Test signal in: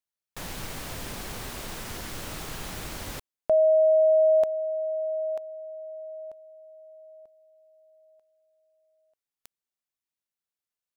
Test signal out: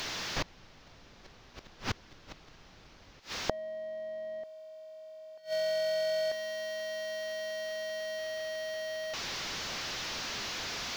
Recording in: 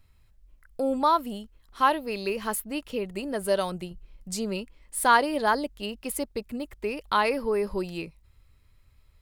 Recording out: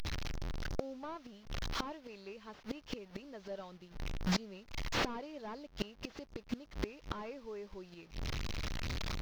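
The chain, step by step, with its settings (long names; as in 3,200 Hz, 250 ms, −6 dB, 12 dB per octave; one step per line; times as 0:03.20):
linear delta modulator 32 kbit/s, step −37.5 dBFS
bit reduction 10 bits
gate with flip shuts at −27 dBFS, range −26 dB
level +7 dB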